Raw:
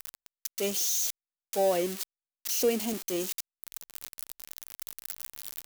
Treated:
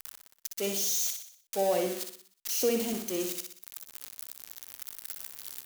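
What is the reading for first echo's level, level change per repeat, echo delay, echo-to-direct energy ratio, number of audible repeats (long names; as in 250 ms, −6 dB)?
−6.0 dB, −6.0 dB, 61 ms, −5.0 dB, 5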